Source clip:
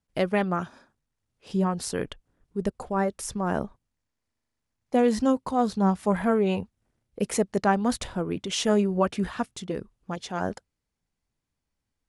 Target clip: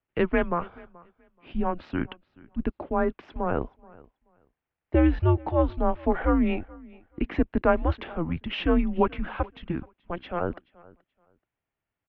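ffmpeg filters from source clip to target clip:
-filter_complex "[0:a]highpass=f=220:t=q:w=0.5412,highpass=f=220:t=q:w=1.307,lowpass=f=3.1k:t=q:w=0.5176,lowpass=f=3.1k:t=q:w=0.7071,lowpass=f=3.1k:t=q:w=1.932,afreqshift=-170,asplit=2[a][b];[b]aecho=0:1:429|858:0.0668|0.0134[c];[a][c]amix=inputs=2:normalize=0,volume=2dB"

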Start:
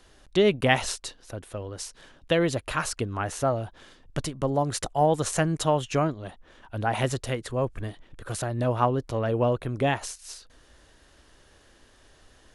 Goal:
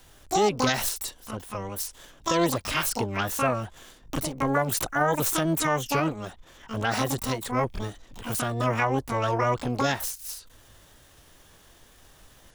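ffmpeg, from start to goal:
-filter_complex "[0:a]asplit=2[a][b];[b]asetrate=88200,aresample=44100,atempo=0.5,volume=-1dB[c];[a][c]amix=inputs=2:normalize=0,highshelf=f=8.8k:g=7.5,alimiter=limit=-13dB:level=0:latency=1:release=70,volume=-1dB"

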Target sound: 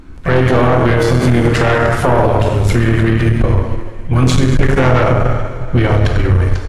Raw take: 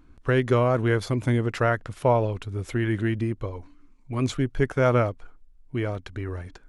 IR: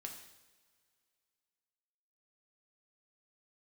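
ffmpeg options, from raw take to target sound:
-filter_complex "[0:a]asubboost=boost=6:cutoff=76[a];[1:a]atrim=start_sample=2205,asetrate=29547,aresample=44100[b];[a][b]afir=irnorm=-1:irlink=0,asplit=3[c][d][e];[d]asetrate=29433,aresample=44100,atempo=1.49831,volume=-9dB[f];[e]asetrate=58866,aresample=44100,atempo=0.749154,volume=-12dB[g];[c][f][g]amix=inputs=3:normalize=0,aeval=exprs='0.473*(cos(1*acos(clip(val(0)/0.473,-1,1)))-cos(1*PI/2))+0.0531*(cos(5*acos(clip(val(0)/0.473,-1,1)))-cos(5*PI/2))+0.0944*(cos(6*acos(clip(val(0)/0.473,-1,1)))-cos(6*PI/2))':c=same,alimiter=level_in=16.5dB:limit=-1dB:release=50:level=0:latency=1,volume=-1dB"

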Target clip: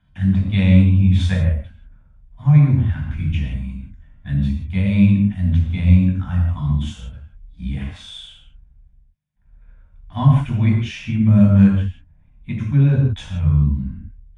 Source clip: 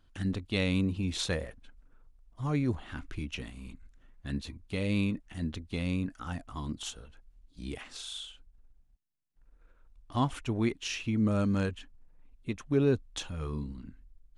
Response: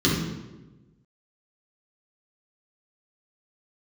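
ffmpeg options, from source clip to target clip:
-filter_complex "[1:a]atrim=start_sample=2205,atrim=end_sample=4410,asetrate=22932,aresample=44100[a];[0:a][a]afir=irnorm=-1:irlink=0,volume=-14dB"

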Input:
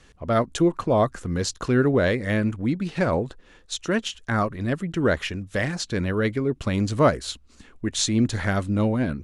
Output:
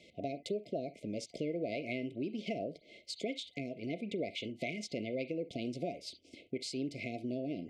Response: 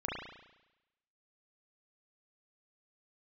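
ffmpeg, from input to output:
-filter_complex "[0:a]asplit=2[a][b];[1:a]atrim=start_sample=2205,atrim=end_sample=3969,highshelf=f=2.6k:g=9.5[c];[b][c]afir=irnorm=-1:irlink=0,volume=-16.5dB[d];[a][d]amix=inputs=2:normalize=0,acompressor=threshold=-32dB:ratio=5,afftfilt=real='re*(1-between(b*sr/4096,600,1700))':imag='im*(1-between(b*sr/4096,600,1700))':win_size=4096:overlap=0.75,asetrate=52920,aresample=44100,highpass=210,lowpass=4.3k,volume=-2dB"

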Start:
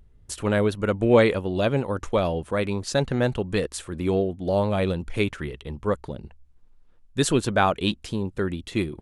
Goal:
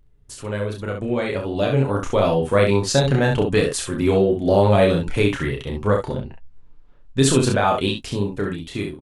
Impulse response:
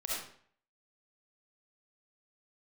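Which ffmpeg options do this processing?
-filter_complex "[0:a]alimiter=limit=-15dB:level=0:latency=1:release=99,dynaudnorm=f=500:g=7:m=11dB,flanger=delay=6.7:depth=1.5:regen=44:speed=0.59:shape=triangular,asettb=1/sr,asplit=3[a][b][c];[a]atrim=end=6.144[d];[b]atrim=start=6.14:end=7.2,asetpts=PTS-STARTPTS,afade=t=in:d=0.004:c=qsin,afade=t=out:st=1.056:d=0.004:c=qsin,adynamicsmooth=sensitivity=2:basefreq=5.4k[e];[c]atrim=start=7.196[f];[d][e]acrossfade=d=0.004:c1=hsin:c2=qsin[g];[g][f]acrossfade=d=0.004:c1=qsin:c2=hsin,aecho=1:1:30|67:0.668|0.531"

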